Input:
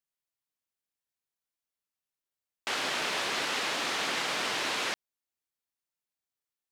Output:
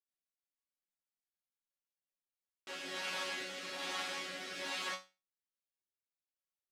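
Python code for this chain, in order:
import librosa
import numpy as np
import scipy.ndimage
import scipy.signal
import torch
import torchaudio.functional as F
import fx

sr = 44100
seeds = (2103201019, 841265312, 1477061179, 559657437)

y = fx.rotary_switch(x, sr, hz=6.3, then_hz=1.2, switch_at_s=1.65)
y = fx.resonator_bank(y, sr, root=54, chord='fifth', decay_s=0.28)
y = F.gain(torch.from_numpy(y), 7.0).numpy()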